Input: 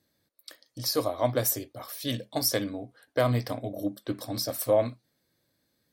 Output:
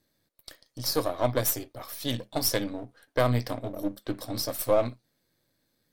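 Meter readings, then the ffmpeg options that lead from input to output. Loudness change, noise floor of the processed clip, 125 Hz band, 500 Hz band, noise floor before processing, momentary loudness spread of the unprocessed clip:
0.0 dB, −75 dBFS, +0.5 dB, −0.5 dB, −76 dBFS, 10 LU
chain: -af "aeval=exprs='if(lt(val(0),0),0.447*val(0),val(0))':channel_layout=same,volume=2.5dB"

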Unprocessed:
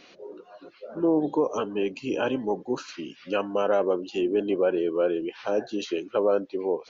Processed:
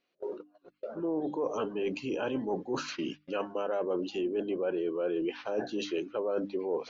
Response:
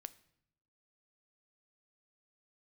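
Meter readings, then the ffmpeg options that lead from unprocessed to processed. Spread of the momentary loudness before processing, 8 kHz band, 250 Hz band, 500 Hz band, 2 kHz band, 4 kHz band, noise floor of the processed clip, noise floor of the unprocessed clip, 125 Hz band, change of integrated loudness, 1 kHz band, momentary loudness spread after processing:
15 LU, can't be measured, −6.0 dB, −6.5 dB, −5.5 dB, −3.5 dB, −75 dBFS, −54 dBFS, −5.0 dB, −7.0 dB, −6.5 dB, 6 LU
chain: -filter_complex "[0:a]agate=range=-32dB:threshold=-42dB:ratio=16:detection=peak,areverse,acompressor=threshold=-31dB:ratio=6,areverse,highshelf=frequency=5800:gain=-7,bandreject=frequency=50:width_type=h:width=6,bandreject=frequency=100:width_type=h:width=6,bandreject=frequency=150:width_type=h:width=6,bandreject=frequency=200:width_type=h:width=6,bandreject=frequency=250:width_type=h:width=6,bandreject=frequency=300:width_type=h:width=6,asplit=2[link_01][link_02];[link_02]alimiter=level_in=10.5dB:limit=-24dB:level=0:latency=1:release=19,volume=-10.5dB,volume=-2dB[link_03];[link_01][link_03]amix=inputs=2:normalize=0"

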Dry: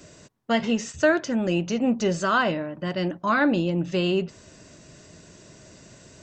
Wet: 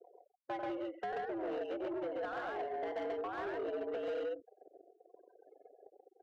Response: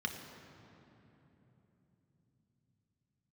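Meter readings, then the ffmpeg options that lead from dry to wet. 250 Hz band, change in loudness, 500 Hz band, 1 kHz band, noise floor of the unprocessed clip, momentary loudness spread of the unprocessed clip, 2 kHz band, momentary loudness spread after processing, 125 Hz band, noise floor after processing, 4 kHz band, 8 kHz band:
−20.5 dB, −15.5 dB, −11.5 dB, −13.0 dB, −51 dBFS, 7 LU, −19.5 dB, 3 LU, −33.0 dB, −73 dBFS, −22.5 dB, below −35 dB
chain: -af "highpass=frequency=240:width_type=q:width=0.5412,highpass=frequency=240:width_type=q:width=1.307,lowpass=frequency=3200:width_type=q:width=0.5176,lowpass=frequency=3200:width_type=q:width=0.7071,lowpass=frequency=3200:width_type=q:width=1.932,afreqshift=110,acompressor=threshold=-32dB:ratio=16,aresample=11025,acrusher=bits=7:mix=0:aa=0.000001,aresample=44100,afftfilt=real='re*gte(hypot(re,im),0.01)':imag='im*gte(hypot(re,im),0.01)':win_size=1024:overlap=0.75,bandreject=frequency=1200:width=5.7,aecho=1:1:93.29|134.1:0.447|0.891,volume=33.5dB,asoftclip=hard,volume=-33.5dB,aemphasis=mode=production:type=riaa,adynamicsmooth=sensitivity=1:basefreq=680,volume=3dB"

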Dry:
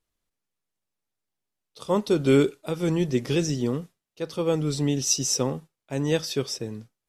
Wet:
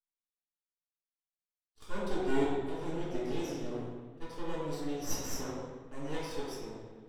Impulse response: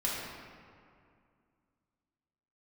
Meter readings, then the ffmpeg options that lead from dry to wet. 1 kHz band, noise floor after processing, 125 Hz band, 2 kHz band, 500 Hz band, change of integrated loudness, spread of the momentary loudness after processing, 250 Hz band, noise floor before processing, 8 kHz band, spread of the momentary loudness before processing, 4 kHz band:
−5.0 dB, below −85 dBFS, −16.0 dB, −8.0 dB, −11.0 dB, −12.5 dB, 12 LU, −12.0 dB, below −85 dBFS, −16.0 dB, 13 LU, −15.0 dB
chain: -filter_complex "[0:a]lowpass=11000,agate=range=-14dB:threshold=-47dB:ratio=16:detection=peak,highpass=45,equalizer=frequency=88:width=0.56:gain=-13,flanger=delay=9.3:depth=4.3:regen=-65:speed=0.4:shape=sinusoidal,aeval=exprs='max(val(0),0)':channel_layout=same[link_01];[1:a]atrim=start_sample=2205,asetrate=66150,aresample=44100[link_02];[link_01][link_02]afir=irnorm=-1:irlink=0,adynamicequalizer=threshold=0.00126:dfrequency=2000:dqfactor=0.7:tfrequency=2000:tqfactor=0.7:attack=5:release=100:ratio=0.375:range=2.5:mode=cutabove:tftype=highshelf,volume=-3.5dB"

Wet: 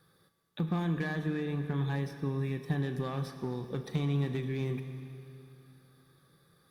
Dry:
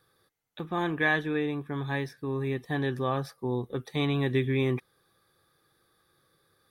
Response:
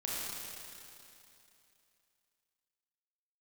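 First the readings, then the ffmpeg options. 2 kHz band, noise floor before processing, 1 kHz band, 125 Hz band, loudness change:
−11.0 dB, −70 dBFS, −8.5 dB, 0.0 dB, −4.5 dB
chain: -filter_complex "[0:a]acrossover=split=1700|4800[link_01][link_02][link_03];[link_01]acompressor=threshold=-33dB:ratio=4[link_04];[link_02]acompressor=threshold=-48dB:ratio=4[link_05];[link_03]acompressor=threshold=-55dB:ratio=4[link_06];[link_04][link_05][link_06]amix=inputs=3:normalize=0,asoftclip=type=hard:threshold=-28dB,acompressor=threshold=-33dB:ratio=6,equalizer=frequency=170:width_type=o:width=0.64:gain=12,asplit=2[link_07][link_08];[1:a]atrim=start_sample=2205,adelay=36[link_09];[link_08][link_09]afir=irnorm=-1:irlink=0,volume=-11.5dB[link_10];[link_07][link_10]amix=inputs=2:normalize=0" -ar 48000 -c:a libopus -b:a 64k

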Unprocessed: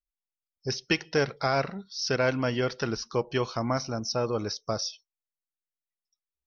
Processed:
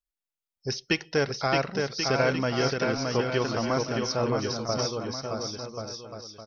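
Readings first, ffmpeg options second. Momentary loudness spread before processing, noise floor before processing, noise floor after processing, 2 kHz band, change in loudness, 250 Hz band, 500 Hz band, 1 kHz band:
7 LU, below −85 dBFS, below −85 dBFS, +2.0 dB, +1.5 dB, +2.5 dB, +2.0 dB, +2.0 dB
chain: -af "aecho=1:1:620|1085|1434|1695|1891:0.631|0.398|0.251|0.158|0.1"

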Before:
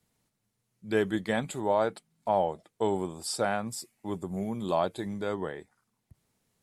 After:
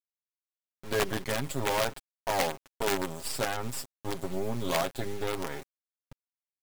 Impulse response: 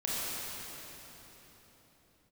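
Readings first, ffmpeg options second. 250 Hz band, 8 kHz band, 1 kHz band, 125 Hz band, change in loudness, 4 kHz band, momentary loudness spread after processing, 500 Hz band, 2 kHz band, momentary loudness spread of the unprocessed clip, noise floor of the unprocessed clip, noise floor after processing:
−4.5 dB, +3.5 dB, −2.0 dB, +0.5 dB, −1.0 dB, +5.5 dB, 9 LU, −3.0 dB, +3.0 dB, 10 LU, −80 dBFS, below −85 dBFS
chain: -af "acrusher=bits=5:dc=4:mix=0:aa=0.000001,alimiter=limit=-23.5dB:level=0:latency=1:release=57,aecho=1:1:7.4:0.67,aeval=exprs='(mod(11.9*val(0)+1,2)-1)/11.9':channel_layout=same,volume=3.5dB"

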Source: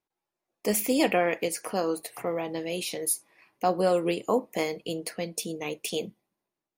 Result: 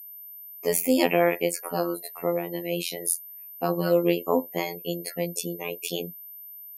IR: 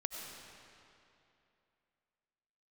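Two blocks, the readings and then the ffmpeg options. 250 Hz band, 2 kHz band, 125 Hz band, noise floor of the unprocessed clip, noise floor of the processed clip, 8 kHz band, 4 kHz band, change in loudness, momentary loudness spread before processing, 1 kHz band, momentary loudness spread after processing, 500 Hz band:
+2.5 dB, +1.5 dB, +4.5 dB, below −85 dBFS, −44 dBFS, +1.0 dB, +1.0 dB, +2.0 dB, 10 LU, −0.5 dB, 17 LU, +2.0 dB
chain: -af "afftdn=noise_reduction=17:noise_floor=-41,afftfilt=real='hypot(re,im)*cos(PI*b)':imag='0':win_size=2048:overlap=0.75,aeval=exprs='val(0)+0.00501*sin(2*PI*13000*n/s)':channel_layout=same,volume=5.5dB"

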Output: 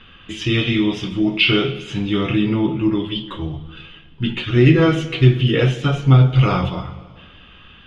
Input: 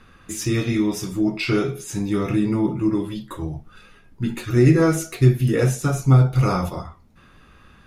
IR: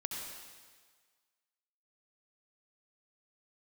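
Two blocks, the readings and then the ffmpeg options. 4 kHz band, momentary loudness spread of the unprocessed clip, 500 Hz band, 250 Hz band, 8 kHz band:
+13.5 dB, 15 LU, +2.0 dB, +2.5 dB, below −10 dB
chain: -filter_complex "[0:a]lowpass=frequency=3100:width_type=q:width=13,asplit=2[link_01][link_02];[1:a]atrim=start_sample=2205,asetrate=38808,aresample=44100,lowshelf=frequency=420:gain=8[link_03];[link_02][link_03]afir=irnorm=-1:irlink=0,volume=-14.5dB[link_04];[link_01][link_04]amix=inputs=2:normalize=0"

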